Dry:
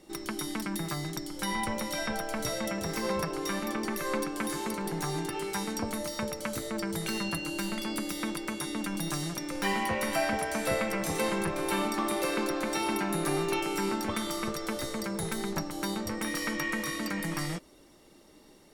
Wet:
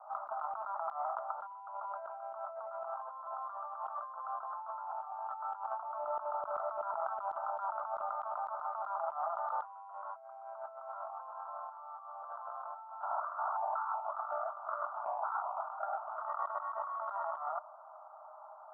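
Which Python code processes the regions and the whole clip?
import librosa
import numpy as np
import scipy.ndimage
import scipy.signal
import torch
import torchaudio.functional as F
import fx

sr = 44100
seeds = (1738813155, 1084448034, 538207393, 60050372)

y = fx.chain(x, sr, fx.halfwave_hold(),
    fx.over_compress(threshold_db=-31.0, ratio=-0.5),
    fx.filter_held_notch(hz=5.4, low_hz=300.0, high_hz=1700.0), at=(13.01, 16.22))
y = scipy.signal.sosfilt(scipy.signal.cheby1(5, 1.0, [630.0, 1400.0], 'bandpass', fs=sr, output='sos'), y)
y = fx.over_compress(y, sr, threshold_db=-50.0, ratio=-1.0)
y = F.gain(torch.from_numpy(y), 8.5).numpy()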